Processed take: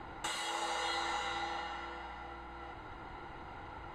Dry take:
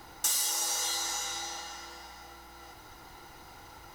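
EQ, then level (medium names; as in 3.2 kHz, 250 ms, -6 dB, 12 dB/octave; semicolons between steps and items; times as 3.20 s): boxcar filter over 8 samples; distance through air 63 m; +4.0 dB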